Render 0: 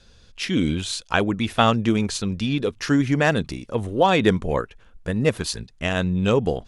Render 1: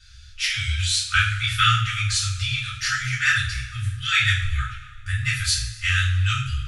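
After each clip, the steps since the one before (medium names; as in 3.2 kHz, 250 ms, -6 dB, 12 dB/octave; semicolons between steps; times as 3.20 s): two-slope reverb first 0.44 s, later 1.8 s, from -17 dB, DRR -9 dB; FFT band-reject 130–1200 Hz; trim -3 dB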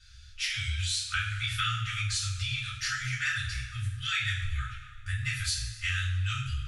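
compression 3:1, threshold -22 dBFS, peak gain reduction 7 dB; dynamic bell 690 Hz, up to -5 dB, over -46 dBFS, Q 1.1; trim -5.5 dB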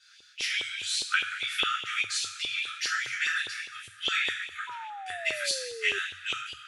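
LFO high-pass saw up 4.9 Hz 400–3300 Hz; painted sound fall, 4.67–5.99 s, 390–1000 Hz -40 dBFS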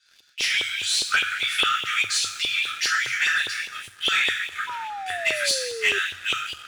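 waveshaping leveller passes 2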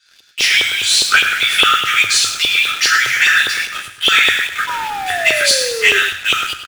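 in parallel at -9.5 dB: bit crusher 5-bit; on the sum: delay 104 ms -10.5 dB; trim +7.5 dB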